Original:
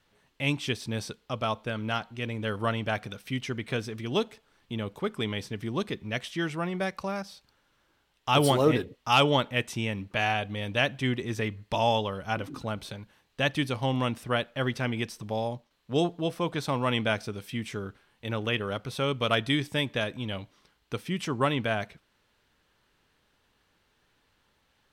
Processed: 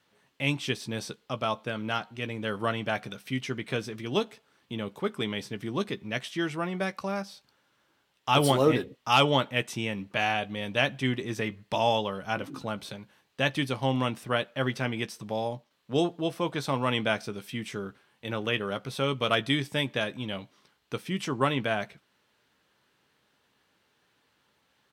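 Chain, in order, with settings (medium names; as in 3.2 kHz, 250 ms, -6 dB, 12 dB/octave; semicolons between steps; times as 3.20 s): high-pass 120 Hz; doubling 15 ms -11.5 dB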